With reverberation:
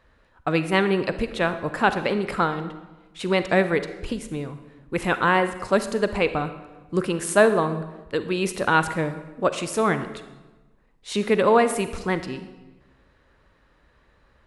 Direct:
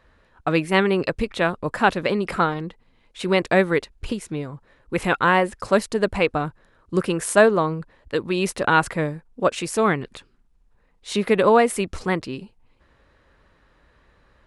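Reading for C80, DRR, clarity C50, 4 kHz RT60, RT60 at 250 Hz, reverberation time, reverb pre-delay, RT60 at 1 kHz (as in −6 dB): 13.0 dB, 10.5 dB, 11.5 dB, 0.85 s, 1.3 s, 1.2 s, 35 ms, 1.1 s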